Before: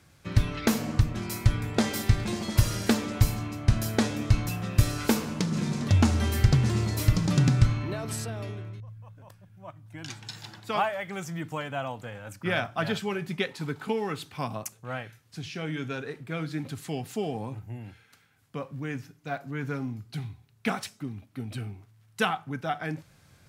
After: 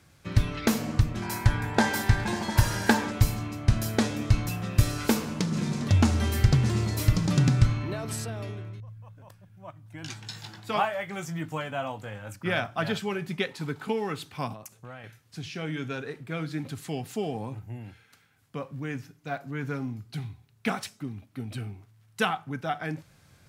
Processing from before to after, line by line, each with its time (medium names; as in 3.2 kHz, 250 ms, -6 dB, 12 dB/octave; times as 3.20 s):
1.22–3.11 s: small resonant body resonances 900/1600 Hz, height 14 dB, ringing for 20 ms
10.01–12.35 s: doubling 19 ms -8 dB
14.53–15.04 s: compression, threshold -39 dBFS